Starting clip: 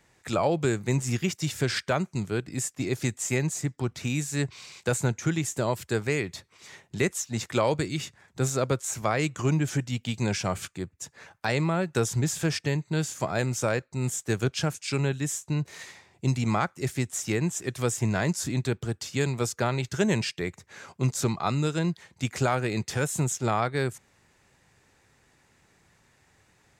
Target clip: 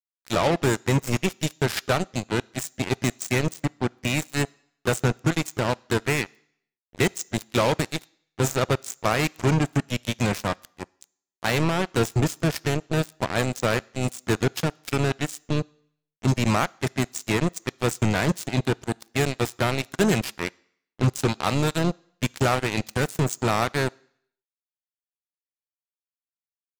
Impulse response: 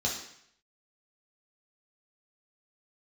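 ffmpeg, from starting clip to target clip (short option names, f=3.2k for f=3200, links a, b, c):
-filter_complex "[0:a]acrusher=bits=3:mix=0:aa=0.5,asplit=2[a][b];[b]asetrate=35002,aresample=44100,atempo=1.25992,volume=-15dB[c];[a][c]amix=inputs=2:normalize=0,asplit=2[d][e];[1:a]atrim=start_sample=2205,lowshelf=f=430:g=-8.5[f];[e][f]afir=irnorm=-1:irlink=0,volume=-28dB[g];[d][g]amix=inputs=2:normalize=0,volume=3dB"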